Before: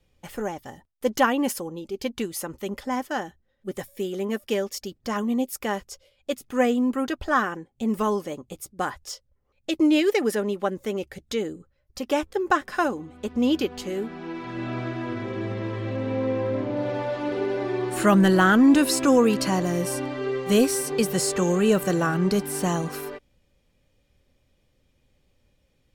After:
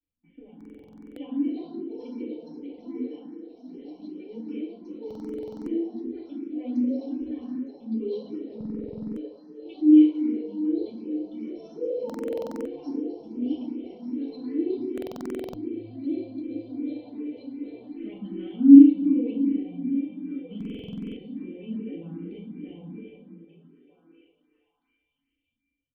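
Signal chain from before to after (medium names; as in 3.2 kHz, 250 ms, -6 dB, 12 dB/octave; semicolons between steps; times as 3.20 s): companding laws mixed up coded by A; repeats whose band climbs or falls 627 ms, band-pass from 180 Hz, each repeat 1.4 oct, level -6 dB; flange 1.1 Hz, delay 8.8 ms, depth 7.9 ms, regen -71%; cascade formant filter i; comb 3.9 ms, depth 45%; ever faster or slower copies 658 ms, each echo +5 st, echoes 2, each echo -6 dB; dynamic bell 1.4 kHz, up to -6 dB, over -60 dBFS, Q 2.5; FDN reverb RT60 1.4 s, low-frequency decay 0.85×, high-frequency decay 0.45×, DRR -6 dB; buffer glitch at 0.56/5.06/8.56/12.05/14.93/20.56 s, samples 2048, times 12; barber-pole phaser +2.6 Hz; trim -4 dB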